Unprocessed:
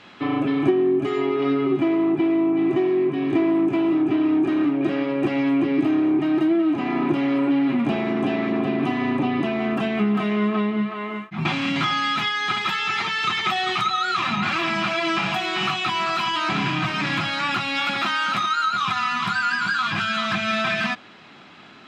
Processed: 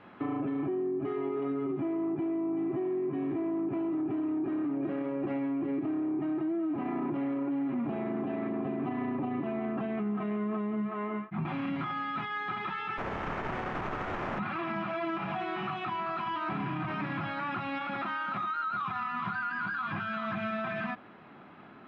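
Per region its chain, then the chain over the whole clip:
12.97–14.38 spectral contrast lowered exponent 0.22 + running maximum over 9 samples
whole clip: limiter -18.5 dBFS; LPF 1400 Hz 12 dB/oct; compressor, threshold -26 dBFS; gain -3 dB

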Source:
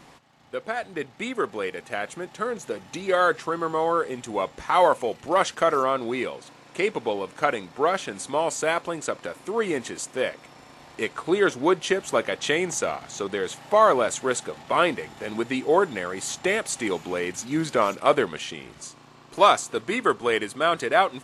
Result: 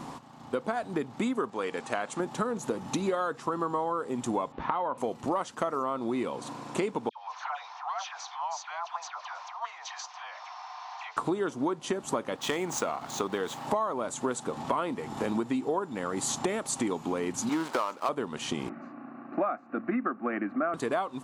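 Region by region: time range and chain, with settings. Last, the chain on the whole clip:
1.5–2.2 LPF 9300 Hz 24 dB/oct + low shelf 400 Hz -9 dB
4.52–4.98 LPF 3400 Hz 24 dB/oct + compressor 3:1, threshold -23 dBFS
7.09–11.17 compressor 12:1, threshold -34 dBFS + Chebyshev band-pass 720–6100 Hz, order 5 + dispersion lows, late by 95 ms, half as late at 1500 Hz
12.36–13.67 median filter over 5 samples + low shelf 500 Hz -7.5 dB + hard clip -15 dBFS
17.49–18.09 switching dead time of 0.17 ms + HPF 550 Hz 6 dB/oct + overdrive pedal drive 11 dB, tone 2600 Hz, clips at -4 dBFS
18.69–20.74 Chebyshev band-pass 120–2900 Hz, order 4 + fixed phaser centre 650 Hz, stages 8
whole clip: graphic EQ 125/250/1000/2000/8000 Hz +5/+10/+10/-5/+3 dB; compressor 12:1, threshold -29 dBFS; gain +2.5 dB

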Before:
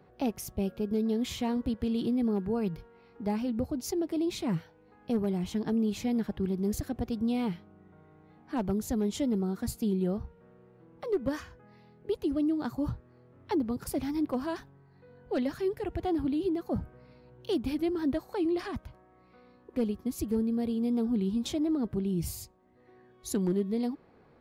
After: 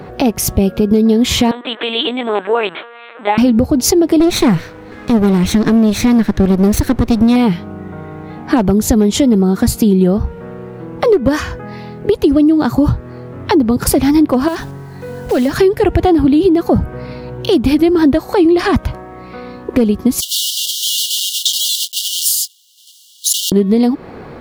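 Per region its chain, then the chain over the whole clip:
1.51–3.38 LPC vocoder at 8 kHz pitch kept + HPF 530 Hz + tilt +4 dB/oct
4.2–7.36 minimum comb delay 0.5 ms + bell 160 Hz -5.5 dB 0.35 oct
14.48–15.56 block floating point 5-bit + compressor 2:1, threshold -46 dBFS
20.2–23.52 block floating point 3-bit + brick-wall FIR high-pass 2800 Hz
whole clip: high shelf 12000 Hz -3 dB; compressor, threshold -36 dBFS; maximiser +29 dB; gain -1 dB

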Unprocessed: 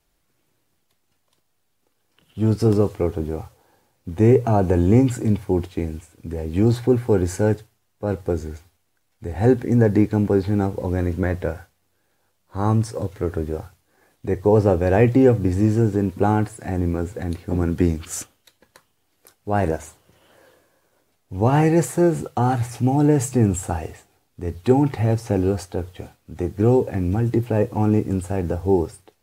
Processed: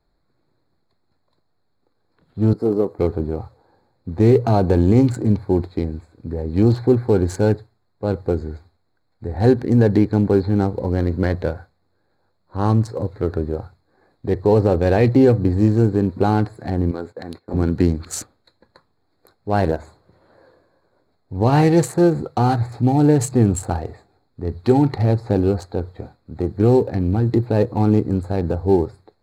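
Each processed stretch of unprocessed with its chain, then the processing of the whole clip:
2.53–2.99 HPF 260 Hz + bell 3600 Hz -14 dB 2.5 oct
16.91–17.54 gate -35 dBFS, range -16 dB + HPF 560 Hz 6 dB/oct
whole clip: Wiener smoothing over 15 samples; bell 4200 Hz +14.5 dB 0.27 oct; maximiser +6 dB; gain -3.5 dB

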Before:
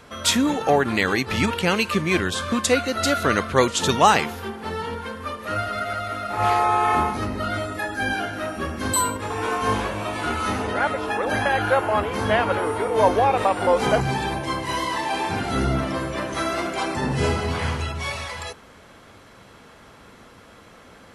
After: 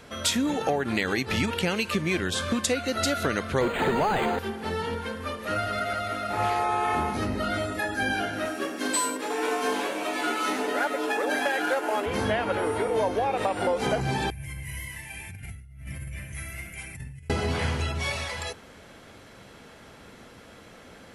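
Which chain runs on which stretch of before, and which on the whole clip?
3.61–4.39 overdrive pedal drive 28 dB, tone 1100 Hz, clips at -3 dBFS + decimation joined by straight lines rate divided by 8×
8.45–12.06 CVSD 64 kbps + Chebyshev high-pass 270 Hz, order 3 + comb 6.9 ms, depth 35%
14.3–17.3 EQ curve 110 Hz 0 dB, 300 Hz -29 dB, 1200 Hz -29 dB, 2200 Hz -7 dB, 4000 Hz -27 dB, 7900 Hz -11 dB, 13000 Hz +3 dB + negative-ratio compressor -38 dBFS
whole clip: bell 1100 Hz -5.5 dB 0.57 oct; notches 50/100 Hz; compressor, threshold -22 dBFS

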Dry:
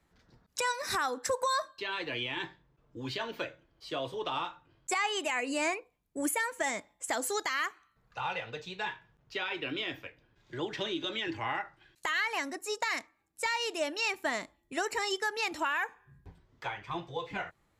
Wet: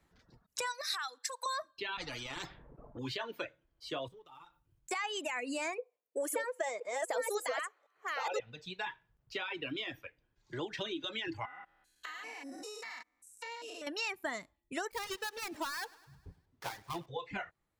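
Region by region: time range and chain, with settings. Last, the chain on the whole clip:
0.81–1.46 HPF 1200 Hz + bell 4100 Hz +9.5 dB 0.54 oct
1.97–2.99 low-pass opened by the level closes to 780 Hz, open at -32 dBFS + tilt -3 dB/oct + spectral compressor 4:1
4.08–4.91 G.711 law mismatch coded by A + low shelf 250 Hz +11 dB + compressor 12:1, threshold -47 dBFS
5.78–8.4 reverse delay 0.522 s, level -2.5 dB + resonant high-pass 500 Hz, resonance Q 5.1
11.45–13.87 stepped spectrum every 0.2 s + comb 4 ms, depth 61% + compressor, threshold -40 dBFS
14.91–17.06 switching dead time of 0.15 ms + feedback echo 0.102 s, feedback 56%, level -13.5 dB
whole clip: reverb removal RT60 1.4 s; compressor 2.5:1, threshold -36 dBFS

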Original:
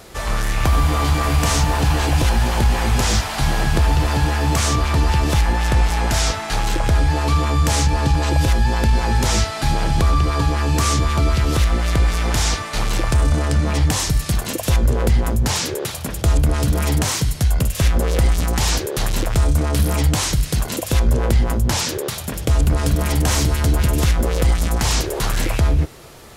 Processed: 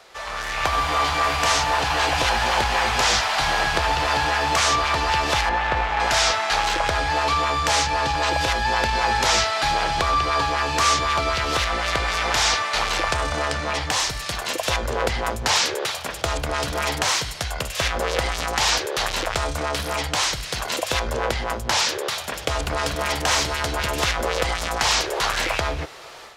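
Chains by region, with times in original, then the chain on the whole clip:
5.49–6 median filter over 9 samples + air absorption 75 m
whole clip: three-band isolator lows -19 dB, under 510 Hz, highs -14 dB, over 6200 Hz; AGC gain up to 9.5 dB; gain -3.5 dB

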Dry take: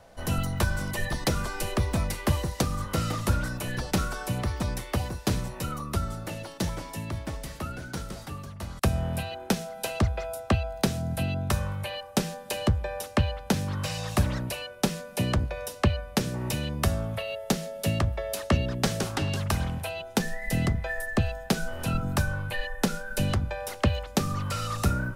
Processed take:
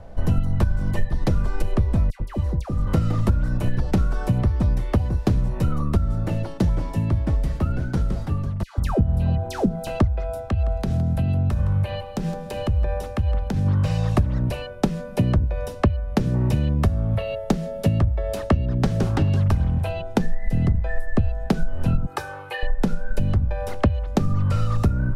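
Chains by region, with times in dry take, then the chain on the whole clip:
2.1–2.87 expander -26 dBFS + compressor 10:1, threshold -32 dBFS + dispersion lows, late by 95 ms, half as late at 1300 Hz
8.63–9.87 dispersion lows, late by 0.149 s, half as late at 1000 Hz + upward compressor, threshold -43 dBFS + dynamic EQ 2200 Hz, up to -5 dB, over -50 dBFS, Q 1.2
10.47–13.66 compressor 12:1, threshold -30 dBFS + echo 0.164 s -13.5 dB
22.06–22.63 HPF 590 Hz + comb 2.4 ms, depth 81%
whole clip: tilt -3.5 dB/oct; compressor 6:1, threshold -20 dBFS; gain +4 dB

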